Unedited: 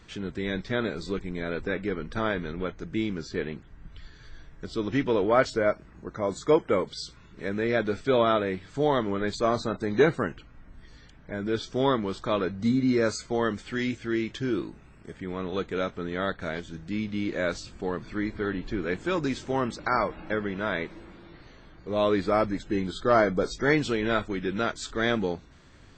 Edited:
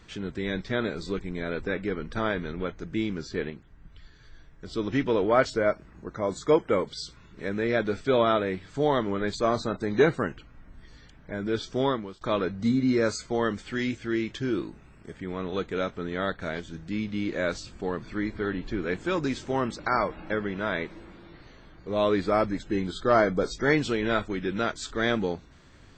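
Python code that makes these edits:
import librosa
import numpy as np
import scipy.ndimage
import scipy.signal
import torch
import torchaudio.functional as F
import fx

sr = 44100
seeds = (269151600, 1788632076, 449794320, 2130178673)

y = fx.edit(x, sr, fx.clip_gain(start_s=3.5, length_s=1.16, db=-4.5),
    fx.fade_out_to(start_s=11.79, length_s=0.42, floor_db=-21.0), tone=tone)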